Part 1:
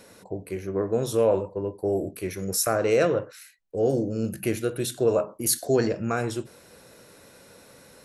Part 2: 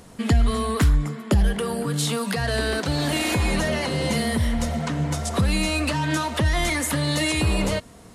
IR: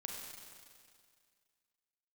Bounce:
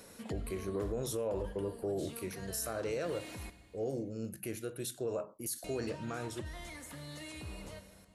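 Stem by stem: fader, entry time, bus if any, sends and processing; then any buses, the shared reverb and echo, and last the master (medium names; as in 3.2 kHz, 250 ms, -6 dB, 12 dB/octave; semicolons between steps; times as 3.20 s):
2.07 s -5.5 dB -> 2.35 s -12.5 dB, 0.00 s, no send, treble shelf 6.7 kHz +6.5 dB
-14.5 dB, 0.00 s, muted 3.50–5.64 s, send -16 dB, auto duck -12 dB, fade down 0.40 s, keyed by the first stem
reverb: on, RT60 2.1 s, pre-delay 32 ms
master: peak limiter -27.5 dBFS, peak gain reduction 11 dB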